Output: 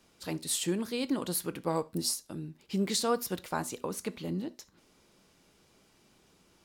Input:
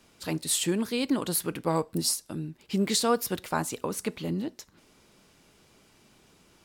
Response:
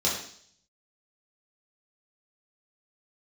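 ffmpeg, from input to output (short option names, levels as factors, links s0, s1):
-filter_complex "[0:a]asplit=2[s0][s1];[1:a]atrim=start_sample=2205,atrim=end_sample=3969[s2];[s1][s2]afir=irnorm=-1:irlink=0,volume=0.0562[s3];[s0][s3]amix=inputs=2:normalize=0,volume=0.562"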